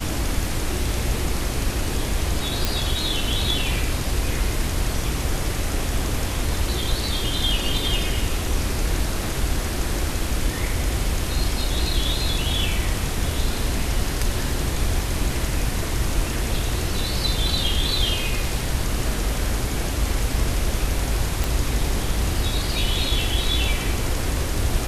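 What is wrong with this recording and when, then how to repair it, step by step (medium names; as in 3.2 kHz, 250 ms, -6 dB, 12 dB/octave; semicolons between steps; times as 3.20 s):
2.65 s: pop
21.44 s: pop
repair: de-click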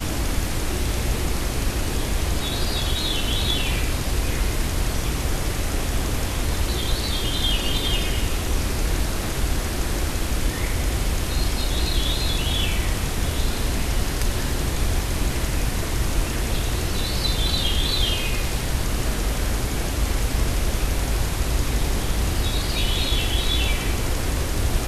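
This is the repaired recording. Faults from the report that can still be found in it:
nothing left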